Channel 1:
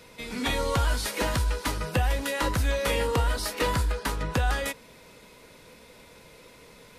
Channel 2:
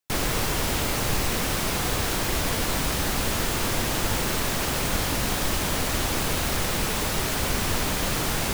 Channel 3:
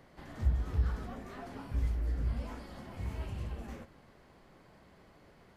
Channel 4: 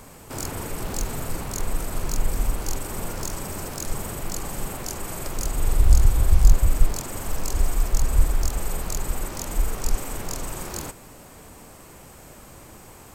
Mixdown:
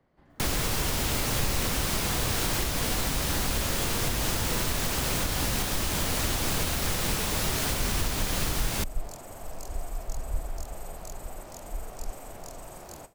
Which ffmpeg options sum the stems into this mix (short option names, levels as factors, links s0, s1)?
-filter_complex "[0:a]adelay=900,volume=0.355[s0];[1:a]acontrast=20,adelay=300,volume=0.75[s1];[2:a]highshelf=f=2300:g=-8.5,volume=0.335[s2];[3:a]agate=range=0.0224:threshold=0.0224:ratio=3:detection=peak,equalizer=f=670:t=o:w=0.64:g=11,adelay=2150,volume=0.224[s3];[s0][s1][s2][s3]amix=inputs=4:normalize=0,acrossover=split=180|3000[s4][s5][s6];[s5]acompressor=threshold=0.0224:ratio=1.5[s7];[s4][s7][s6]amix=inputs=3:normalize=0,alimiter=limit=0.15:level=0:latency=1:release=418"